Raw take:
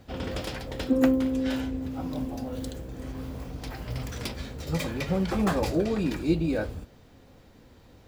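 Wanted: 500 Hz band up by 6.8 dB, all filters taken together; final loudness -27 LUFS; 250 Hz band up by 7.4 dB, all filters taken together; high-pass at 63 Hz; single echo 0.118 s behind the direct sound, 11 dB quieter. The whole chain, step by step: HPF 63 Hz; bell 250 Hz +7 dB; bell 500 Hz +6 dB; echo 0.118 s -11 dB; gain -5.5 dB

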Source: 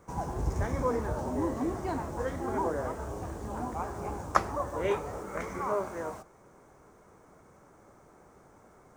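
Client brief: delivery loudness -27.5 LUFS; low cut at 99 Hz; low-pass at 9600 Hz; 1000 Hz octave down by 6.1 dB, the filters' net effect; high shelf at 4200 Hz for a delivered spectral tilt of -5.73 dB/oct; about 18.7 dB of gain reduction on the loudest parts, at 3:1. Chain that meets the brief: HPF 99 Hz; LPF 9600 Hz; bell 1000 Hz -8 dB; high shelf 4200 Hz +4.5 dB; compressor 3:1, threshold -51 dBFS; gain +23.5 dB

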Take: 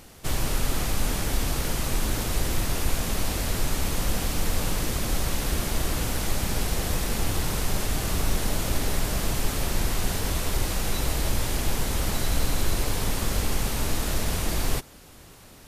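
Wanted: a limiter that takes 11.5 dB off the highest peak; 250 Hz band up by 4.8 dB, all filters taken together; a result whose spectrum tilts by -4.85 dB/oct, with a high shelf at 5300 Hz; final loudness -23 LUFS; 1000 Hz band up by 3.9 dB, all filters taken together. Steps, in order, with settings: bell 250 Hz +6 dB; bell 1000 Hz +5 dB; high shelf 5300 Hz -8 dB; gain +9 dB; limiter -12 dBFS

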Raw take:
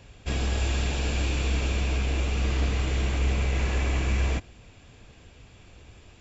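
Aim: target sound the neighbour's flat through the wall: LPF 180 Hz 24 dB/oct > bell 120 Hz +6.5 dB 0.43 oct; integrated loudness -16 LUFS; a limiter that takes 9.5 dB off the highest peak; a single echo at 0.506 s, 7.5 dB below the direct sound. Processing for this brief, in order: limiter -24 dBFS; LPF 180 Hz 24 dB/oct; bell 120 Hz +6.5 dB 0.43 oct; echo 0.506 s -7.5 dB; gain +17 dB

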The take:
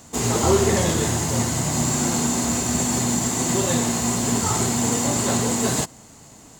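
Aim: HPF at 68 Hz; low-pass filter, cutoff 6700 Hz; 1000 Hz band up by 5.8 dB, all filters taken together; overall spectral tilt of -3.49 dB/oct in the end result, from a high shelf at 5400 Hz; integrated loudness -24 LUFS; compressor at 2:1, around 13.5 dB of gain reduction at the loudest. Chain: HPF 68 Hz; LPF 6700 Hz; bell 1000 Hz +7 dB; high shelf 5400 Hz +6.5 dB; compressor 2:1, threshold -37 dBFS; gain +6.5 dB

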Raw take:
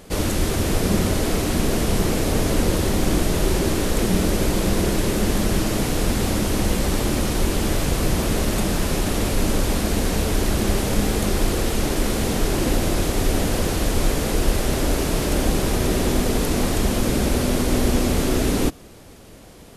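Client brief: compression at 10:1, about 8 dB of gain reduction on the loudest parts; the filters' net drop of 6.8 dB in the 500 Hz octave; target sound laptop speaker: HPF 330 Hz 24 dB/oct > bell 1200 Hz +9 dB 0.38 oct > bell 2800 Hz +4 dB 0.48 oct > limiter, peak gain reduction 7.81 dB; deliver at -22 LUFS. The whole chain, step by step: bell 500 Hz -8.5 dB; compressor 10:1, threshold -23 dBFS; HPF 330 Hz 24 dB/oct; bell 1200 Hz +9 dB 0.38 oct; bell 2800 Hz +4 dB 0.48 oct; gain +11.5 dB; limiter -13.5 dBFS

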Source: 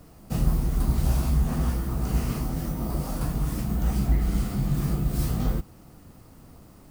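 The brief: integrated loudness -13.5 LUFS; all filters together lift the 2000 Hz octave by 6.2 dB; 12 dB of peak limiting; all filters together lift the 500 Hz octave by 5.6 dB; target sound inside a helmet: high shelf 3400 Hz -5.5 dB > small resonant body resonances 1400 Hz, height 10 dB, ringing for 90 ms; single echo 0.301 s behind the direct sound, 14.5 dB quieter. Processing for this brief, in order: bell 500 Hz +7 dB; bell 2000 Hz +9 dB; limiter -20 dBFS; high shelf 3400 Hz -5.5 dB; echo 0.301 s -14.5 dB; small resonant body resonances 1400 Hz, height 10 dB, ringing for 90 ms; gain +16.5 dB

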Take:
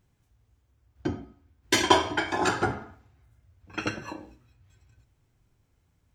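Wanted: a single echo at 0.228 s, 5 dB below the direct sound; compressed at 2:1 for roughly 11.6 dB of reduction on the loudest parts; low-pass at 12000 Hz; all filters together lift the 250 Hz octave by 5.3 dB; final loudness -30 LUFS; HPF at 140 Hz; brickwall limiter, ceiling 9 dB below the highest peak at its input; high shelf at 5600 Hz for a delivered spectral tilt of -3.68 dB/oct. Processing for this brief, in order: HPF 140 Hz; LPF 12000 Hz; bell 250 Hz +8 dB; high shelf 5600 Hz +5.5 dB; compressor 2:1, threshold -33 dBFS; limiter -22 dBFS; echo 0.228 s -5 dB; gain +6 dB

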